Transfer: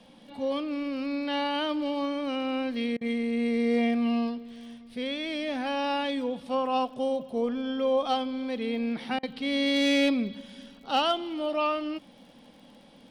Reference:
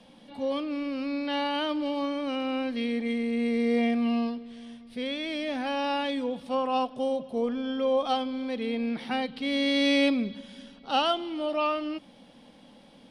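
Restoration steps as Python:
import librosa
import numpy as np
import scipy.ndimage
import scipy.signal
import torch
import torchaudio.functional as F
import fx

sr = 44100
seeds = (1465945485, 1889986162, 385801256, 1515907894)

y = fx.fix_declip(x, sr, threshold_db=-17.0)
y = fx.fix_declick_ar(y, sr, threshold=6.5)
y = fx.fix_interpolate(y, sr, at_s=(2.97, 9.19), length_ms=40.0)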